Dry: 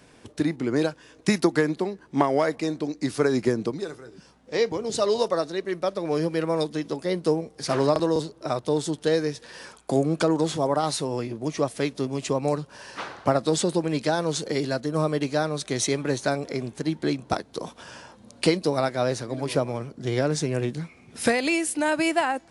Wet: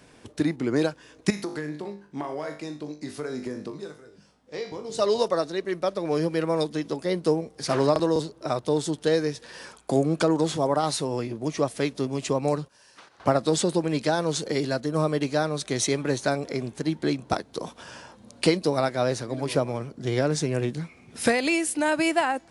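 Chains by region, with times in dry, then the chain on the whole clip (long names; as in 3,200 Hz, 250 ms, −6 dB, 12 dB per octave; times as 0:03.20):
0:01.30–0:04.99: tuned comb filter 50 Hz, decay 0.39 s, mix 80% + downward compressor 2.5 to 1, threshold −29 dBFS
0:12.68–0:13.20: noise gate −36 dBFS, range −17 dB + high-shelf EQ 4,000 Hz +11.5 dB + downward compressor, threshold −47 dBFS
whole clip: no processing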